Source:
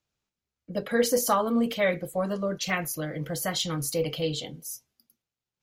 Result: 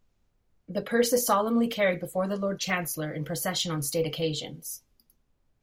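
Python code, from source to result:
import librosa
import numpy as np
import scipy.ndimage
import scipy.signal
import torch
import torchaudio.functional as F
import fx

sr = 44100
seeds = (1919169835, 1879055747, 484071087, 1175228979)

y = fx.dmg_noise_colour(x, sr, seeds[0], colour='brown', level_db=-69.0)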